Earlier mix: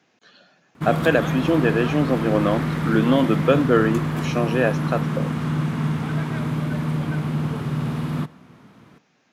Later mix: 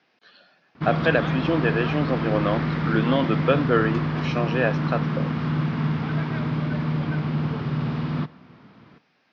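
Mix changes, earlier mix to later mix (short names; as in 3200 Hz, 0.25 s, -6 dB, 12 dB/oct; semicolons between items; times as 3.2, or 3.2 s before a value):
speech: add low shelf 320 Hz -7.5 dB; master: add elliptic low-pass 5100 Hz, stop band 60 dB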